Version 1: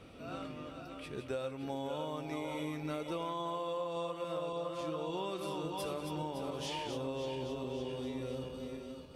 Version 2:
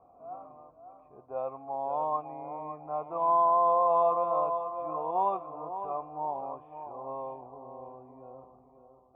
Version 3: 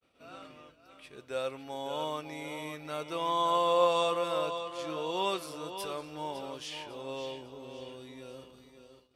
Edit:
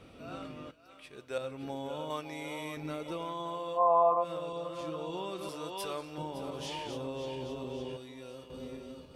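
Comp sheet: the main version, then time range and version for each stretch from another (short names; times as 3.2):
1
0.71–1.38 from 3
2.1–2.77 from 3
3.78–4.23 from 2, crossfade 0.06 s
5.49–6.18 from 3
7.97–8.5 from 3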